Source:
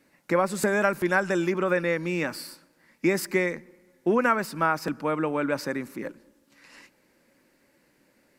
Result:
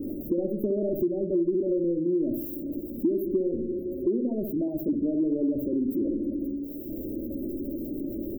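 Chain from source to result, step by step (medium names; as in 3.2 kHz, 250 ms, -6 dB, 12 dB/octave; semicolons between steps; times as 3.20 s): jump at every zero crossing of -25.5 dBFS; inverse Chebyshev band-stop 1.3–7.1 kHz, stop band 60 dB; de-hum 135.2 Hz, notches 3; on a send: feedback echo behind a low-pass 64 ms, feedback 48%, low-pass 3.8 kHz, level -7 dB; on the sum: dynamic bell 1.5 kHz, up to +5 dB, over -45 dBFS, Q 1; spectral gate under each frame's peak -25 dB strong; comb 3.1 ms, depth 66%; compression 5:1, threshold -22 dBFS, peak gain reduction 8 dB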